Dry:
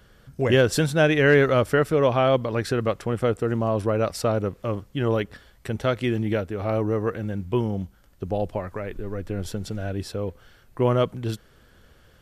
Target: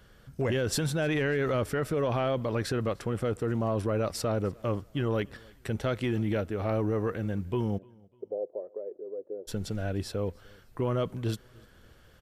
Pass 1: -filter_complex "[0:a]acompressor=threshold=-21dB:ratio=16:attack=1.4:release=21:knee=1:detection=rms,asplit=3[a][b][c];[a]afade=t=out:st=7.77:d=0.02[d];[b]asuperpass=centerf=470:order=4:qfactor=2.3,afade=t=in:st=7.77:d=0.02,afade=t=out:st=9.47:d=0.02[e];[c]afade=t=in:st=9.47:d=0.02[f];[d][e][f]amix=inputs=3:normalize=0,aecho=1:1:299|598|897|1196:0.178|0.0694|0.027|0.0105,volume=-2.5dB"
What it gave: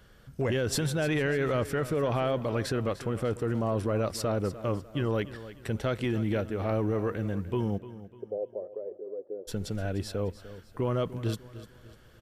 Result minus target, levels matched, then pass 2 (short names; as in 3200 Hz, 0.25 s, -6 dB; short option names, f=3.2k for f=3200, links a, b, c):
echo-to-direct +11.5 dB
-filter_complex "[0:a]acompressor=threshold=-21dB:ratio=16:attack=1.4:release=21:knee=1:detection=rms,asplit=3[a][b][c];[a]afade=t=out:st=7.77:d=0.02[d];[b]asuperpass=centerf=470:order=4:qfactor=2.3,afade=t=in:st=7.77:d=0.02,afade=t=out:st=9.47:d=0.02[e];[c]afade=t=in:st=9.47:d=0.02[f];[d][e][f]amix=inputs=3:normalize=0,aecho=1:1:299|598:0.0473|0.0185,volume=-2.5dB"